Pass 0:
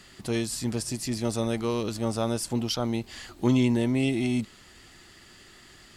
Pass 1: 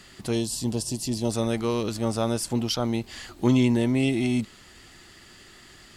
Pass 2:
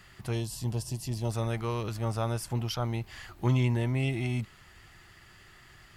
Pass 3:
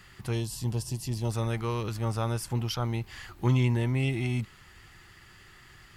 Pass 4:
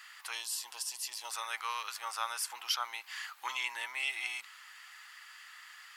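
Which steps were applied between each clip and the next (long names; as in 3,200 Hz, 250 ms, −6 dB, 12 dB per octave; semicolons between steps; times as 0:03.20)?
gain on a spectral selection 0:00.34–0:01.31, 1,100–2,600 Hz −11 dB; level +2 dB
octave-band graphic EQ 125/250/500/4,000/8,000 Hz +4/−11/−5/−7/−9 dB; level −1 dB
parametric band 650 Hz −6.5 dB 0.29 octaves; level +1.5 dB
high-pass filter 1,000 Hz 24 dB per octave; level +3 dB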